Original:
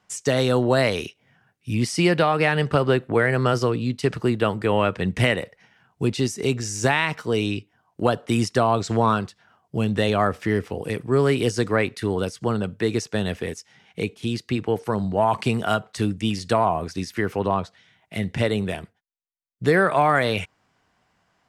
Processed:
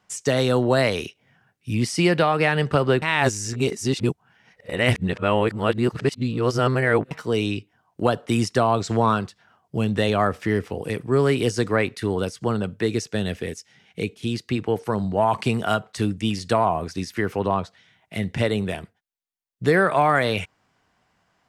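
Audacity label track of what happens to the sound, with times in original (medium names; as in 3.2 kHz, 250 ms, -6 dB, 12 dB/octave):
3.020000	7.110000	reverse
12.860000	14.260000	peaking EQ 980 Hz -6 dB 1 oct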